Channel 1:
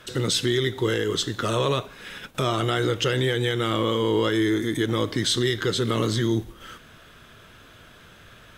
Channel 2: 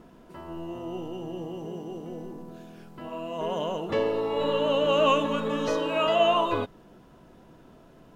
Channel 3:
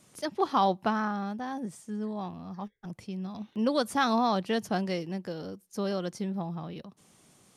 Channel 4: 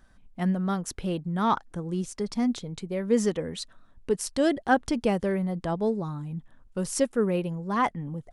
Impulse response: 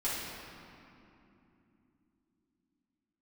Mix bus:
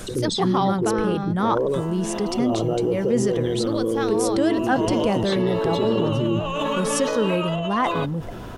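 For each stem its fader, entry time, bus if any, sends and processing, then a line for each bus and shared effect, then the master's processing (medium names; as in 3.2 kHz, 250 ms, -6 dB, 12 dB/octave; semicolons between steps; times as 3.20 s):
-5.0 dB, 0.00 s, no send, resonances exaggerated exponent 2; high-order bell 2.4 kHz -14 dB 2.6 oct; LFO low-pass square 0.6 Hz 910–4600 Hz
-1.5 dB, 1.40 s, no send, bass shelf 290 Hz -10 dB; compressor with a negative ratio -30 dBFS, ratio -1
+3.0 dB, 0.00 s, no send, auto duck -11 dB, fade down 1.85 s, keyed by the fourth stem
-0.5 dB, 0.00 s, no send, none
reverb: none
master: level flattener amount 50%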